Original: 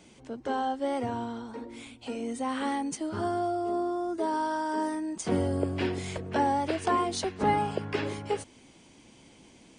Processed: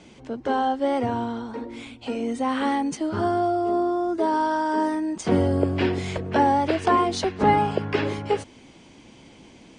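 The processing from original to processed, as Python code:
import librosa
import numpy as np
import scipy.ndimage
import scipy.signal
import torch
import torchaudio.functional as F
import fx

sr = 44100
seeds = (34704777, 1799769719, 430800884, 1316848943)

y = fx.air_absorb(x, sr, metres=74.0)
y = y * 10.0 ** (7.0 / 20.0)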